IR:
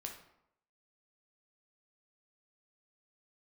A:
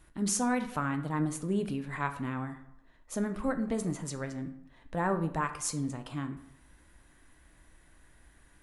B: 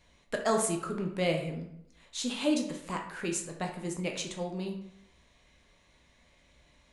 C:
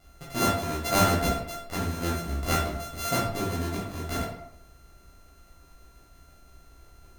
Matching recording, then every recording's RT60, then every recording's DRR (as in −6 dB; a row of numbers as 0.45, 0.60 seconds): B; 0.80, 0.80, 0.80 seconds; 7.5, 1.5, −7.0 decibels